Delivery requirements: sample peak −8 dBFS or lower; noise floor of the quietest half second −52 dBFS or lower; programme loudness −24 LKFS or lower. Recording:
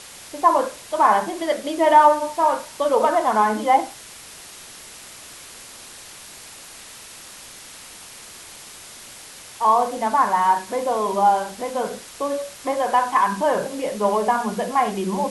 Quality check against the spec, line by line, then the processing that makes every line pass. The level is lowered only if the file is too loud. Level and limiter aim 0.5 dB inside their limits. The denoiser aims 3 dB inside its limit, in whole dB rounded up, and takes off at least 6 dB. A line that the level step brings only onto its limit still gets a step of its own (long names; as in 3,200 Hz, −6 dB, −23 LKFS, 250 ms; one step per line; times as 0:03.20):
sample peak −3.0 dBFS: out of spec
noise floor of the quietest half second −41 dBFS: out of spec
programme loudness −20.0 LKFS: out of spec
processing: broadband denoise 10 dB, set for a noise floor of −41 dBFS
level −4.5 dB
brickwall limiter −8.5 dBFS